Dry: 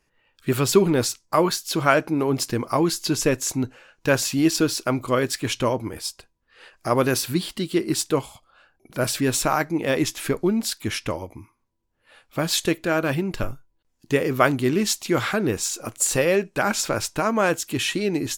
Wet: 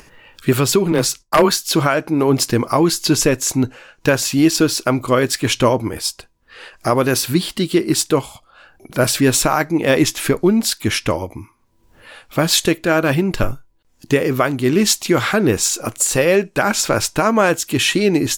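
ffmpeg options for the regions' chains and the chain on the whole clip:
-filter_complex "[0:a]asettb=1/sr,asplit=3[s0][s1][s2];[s0]atrim=end=0.924[s3];[s1]atrim=start=0.92:end=1.52,asetpts=PTS-STARTPTS,afade=t=in:d=0.004:c=qsin,afade=t=out:st=0.596:d=0.004:c=qsin,agate=range=0.0224:threshold=0.00158:ratio=3:release=100:detection=peak,afreqshift=18,aeval=exprs='0.282*(abs(mod(val(0)/0.282+3,4)-2)-1)':c=same[s4];[s2]atrim=start=1.516[s5];[s3][s4]acrossfade=d=0.004:c1=hsin:c2=qsin[s6];[s6][s5]acrossfade=d=0.004:c1=qsin:c2=hsin,acompressor=mode=upward:threshold=0.00794:ratio=2.5,alimiter=limit=0.251:level=0:latency=1:release=452,volume=2.66"

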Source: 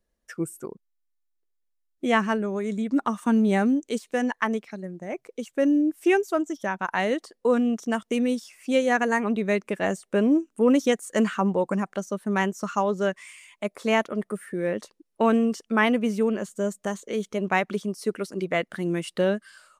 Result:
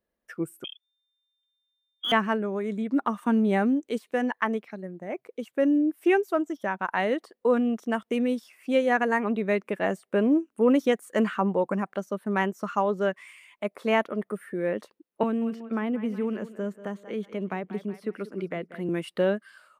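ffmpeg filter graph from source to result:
-filter_complex "[0:a]asettb=1/sr,asplit=3[s0][s1][s2];[s0]atrim=end=0.644[s3];[s1]atrim=start=0.64:end=2.12,asetpts=PTS-STARTPTS,afade=t=in:d=0.004:c=qsin,afade=t=out:st=1.476:d=0.004:c=qsin,lowpass=f=3100:t=q:w=0.5098,lowpass=f=3100:t=q:w=0.6013,lowpass=f=3100:t=q:w=0.9,lowpass=f=3100:t=q:w=2.563,afreqshift=-3600,aeval=exprs='clip(val(0),-1,0.0891)':c=same[s4];[s2]atrim=start=2.116[s5];[s3][s4]acrossfade=d=0.004:c1=hsin:c2=qsin[s6];[s6][s5]acrossfade=d=0.004:c1=qsin:c2=hsin,asettb=1/sr,asplit=3[s7][s8][s9];[s7]atrim=end=15.234[s10];[s8]atrim=start=15.23:end=18.89,asetpts=PTS-STARTPTS,afade=t=in:d=0.004:c=qsin,afade=t=out:st=3.656:d=0.004:c=qsin,aecho=1:1:185|370|555:0.141|0.0438|0.0136,atrim=end_sample=161406,acrossover=split=370|1000|3500[s11][s12][s13][s14];[s11]acompressor=threshold=0.0631:ratio=3[s15];[s12]acompressor=threshold=0.01:ratio=3[s16];[s13]acompressor=threshold=0.00794:ratio=3[s17];[s14]acompressor=threshold=0.00126:ratio=3[s18];[s15][s16][s17][s18]amix=inputs=4:normalize=0[s19];[s9]atrim=start=18.886[s20];[s10][s19]acrossfade=d=0.004:c1=hsin:c2=qsin[s21];[s21][s20]acrossfade=d=0.004:c1=qsin:c2=hsin,highpass=f=180:p=1,equalizer=f=6800:w=0.87:g=-13"

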